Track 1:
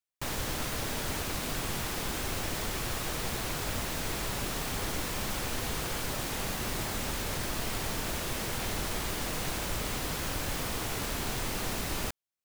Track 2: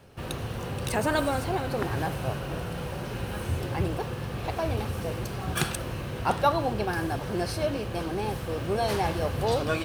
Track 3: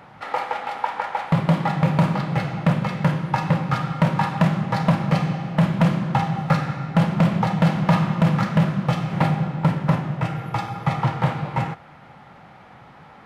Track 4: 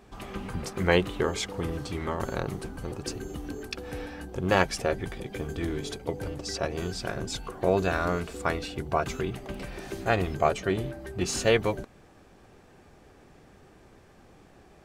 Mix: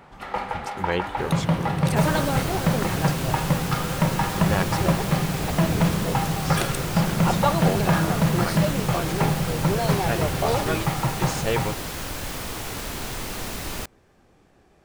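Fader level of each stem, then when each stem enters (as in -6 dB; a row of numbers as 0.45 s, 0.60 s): +2.0 dB, +0.5 dB, -3.5 dB, -3.5 dB; 1.75 s, 1.00 s, 0.00 s, 0.00 s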